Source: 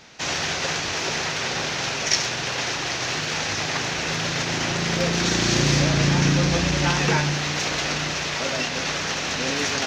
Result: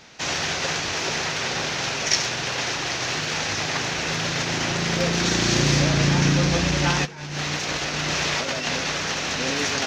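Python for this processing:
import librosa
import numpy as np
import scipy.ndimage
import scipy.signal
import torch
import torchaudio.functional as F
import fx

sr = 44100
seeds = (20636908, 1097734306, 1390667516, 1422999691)

y = fx.over_compress(x, sr, threshold_db=-27.0, ratio=-0.5, at=(7.04, 8.78), fade=0.02)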